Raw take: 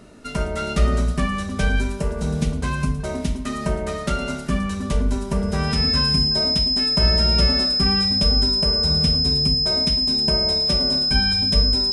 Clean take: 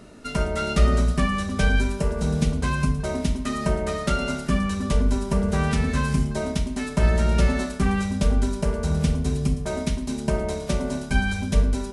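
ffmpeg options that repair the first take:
ffmpeg -i in.wav -af "bandreject=frequency=5100:width=30" out.wav

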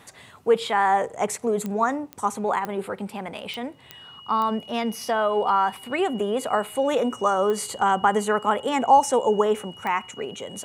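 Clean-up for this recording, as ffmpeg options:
ffmpeg -i in.wav -af "adeclick=threshold=4,bandreject=frequency=2900:width=30" out.wav

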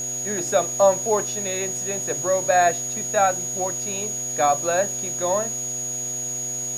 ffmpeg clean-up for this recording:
ffmpeg -i in.wav -af "adeclick=threshold=4,bandreject=frequency=124.9:width_type=h:width=4,bandreject=frequency=249.8:width_type=h:width=4,bandreject=frequency=374.7:width_type=h:width=4,bandreject=frequency=499.6:width_type=h:width=4,bandreject=frequency=624.5:width_type=h:width=4,bandreject=frequency=749.4:width_type=h:width=4,bandreject=frequency=6700:width=30,afwtdn=0.0071" out.wav

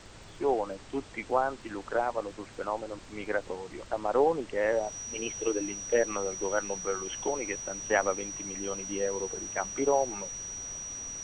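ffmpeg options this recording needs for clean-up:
ffmpeg -i in.wav -af "adeclick=threshold=4,bandreject=frequency=102:width_type=h:width=4,bandreject=frequency=204:width_type=h:width=4,bandreject=frequency=306:width_type=h:width=4,bandreject=frequency=408:width_type=h:width=4,bandreject=frequency=5800:width=30,afftdn=noise_reduction=27:noise_floor=-48" out.wav

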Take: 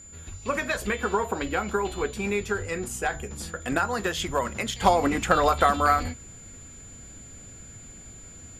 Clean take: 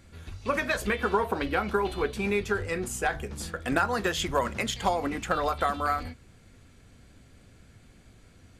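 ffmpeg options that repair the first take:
ffmpeg -i in.wav -af "bandreject=frequency=7100:width=30,asetnsamples=nb_out_samples=441:pad=0,asendcmd='4.81 volume volume -6.5dB',volume=0dB" out.wav

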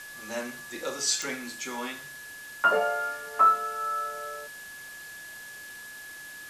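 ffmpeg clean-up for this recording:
ffmpeg -i in.wav -af "adeclick=threshold=4,bandreject=frequency=1700:width=30,afwtdn=0.0045" out.wav

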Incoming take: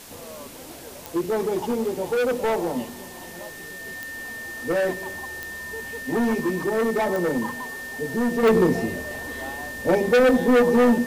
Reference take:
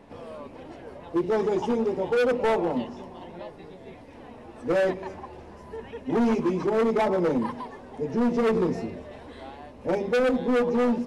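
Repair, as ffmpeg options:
ffmpeg -i in.wav -af "adeclick=threshold=4,bandreject=frequency=1800:width=30,afwtdn=0.0071,asetnsamples=nb_out_samples=441:pad=0,asendcmd='8.43 volume volume -6dB',volume=0dB" out.wav

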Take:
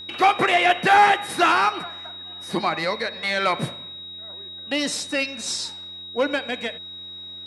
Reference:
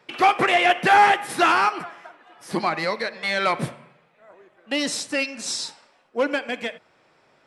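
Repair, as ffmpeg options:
ffmpeg -i in.wav -af "bandreject=frequency=90.1:width_type=h:width=4,bandreject=frequency=180.2:width_type=h:width=4,bandreject=frequency=270.3:width_type=h:width=4,bandreject=frequency=360.4:width_type=h:width=4,bandreject=frequency=3800:width=30" out.wav

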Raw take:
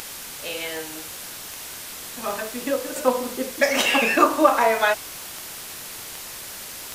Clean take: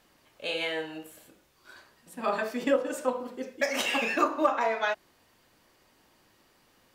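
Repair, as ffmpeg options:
ffmpeg -i in.wav -af "adeclick=threshold=4,afwtdn=0.018,asetnsamples=nb_out_samples=441:pad=0,asendcmd='2.96 volume volume -8.5dB',volume=0dB" out.wav

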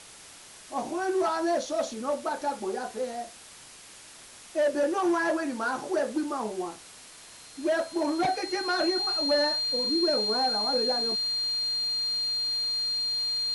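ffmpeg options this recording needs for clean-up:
ffmpeg -i in.wav -af "bandreject=frequency=4200:width=30,afwtdn=0.005" out.wav

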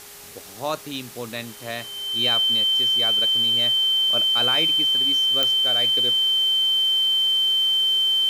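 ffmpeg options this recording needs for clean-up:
ffmpeg -i in.wav -af "adeclick=threshold=4,bandreject=frequency=408.8:width_type=h:width=4,bandreject=frequency=817.6:width_type=h:width=4,bandreject=frequency=1226.4:width_type=h:width=4,bandreject=frequency=1635.2:width_type=h:width=4,bandreject=frequency=2044:width_type=h:width=4,bandreject=frequency=3100:width=30,afftdn=noise_reduction=30:noise_floor=-39" out.wav

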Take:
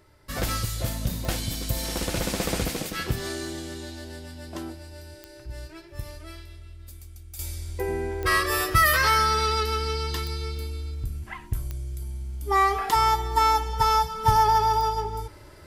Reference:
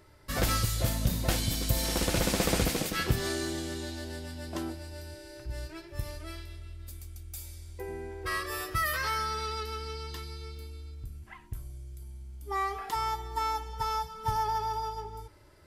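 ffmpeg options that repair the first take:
ffmpeg -i in.wav -af "adeclick=threshold=4,asetnsamples=nb_out_samples=441:pad=0,asendcmd='7.39 volume volume -10.5dB',volume=0dB" out.wav

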